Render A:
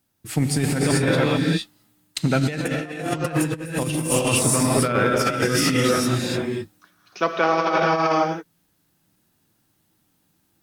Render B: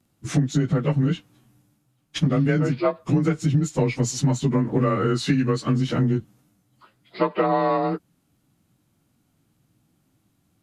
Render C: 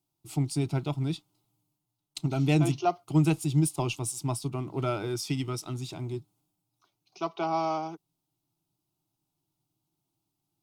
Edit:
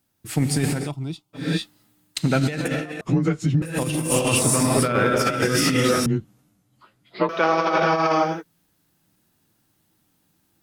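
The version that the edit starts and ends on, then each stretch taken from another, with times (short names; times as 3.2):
A
0.8–1.45 from C, crossfade 0.24 s
3.01–3.62 from B
6.06–7.29 from B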